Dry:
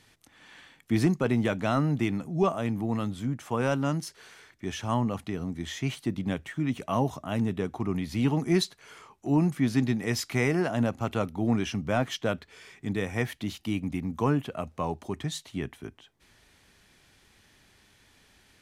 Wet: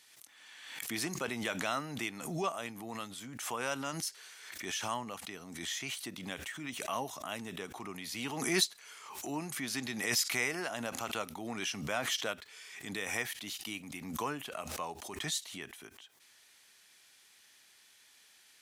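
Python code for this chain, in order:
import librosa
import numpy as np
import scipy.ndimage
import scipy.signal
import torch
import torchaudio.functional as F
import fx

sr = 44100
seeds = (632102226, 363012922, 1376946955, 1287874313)

y = fx.highpass(x, sr, hz=1300.0, slope=6)
y = fx.high_shelf(y, sr, hz=4300.0, db=8.0)
y = fx.pre_swell(y, sr, db_per_s=49.0)
y = y * 10.0 ** (-2.5 / 20.0)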